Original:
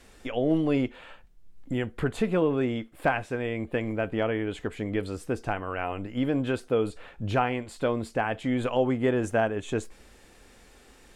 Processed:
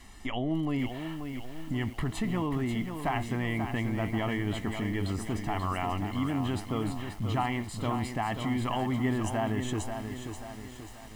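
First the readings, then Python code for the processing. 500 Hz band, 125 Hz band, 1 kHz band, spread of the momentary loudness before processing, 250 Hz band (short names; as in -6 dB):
-9.0 dB, +1.5 dB, -1.0 dB, 8 LU, -2.0 dB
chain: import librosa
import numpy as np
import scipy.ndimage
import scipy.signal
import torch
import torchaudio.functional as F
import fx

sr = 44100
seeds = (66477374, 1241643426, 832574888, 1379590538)

p1 = x + 0.8 * np.pad(x, (int(1.0 * sr / 1000.0), 0))[:len(x)]
p2 = fx.over_compress(p1, sr, threshold_db=-31.0, ratio=-1.0)
p3 = p1 + (p2 * 10.0 ** (0.0 / 20.0))
p4 = fx.echo_crushed(p3, sr, ms=535, feedback_pct=55, bits=7, wet_db=-7)
y = p4 * 10.0 ** (-8.0 / 20.0)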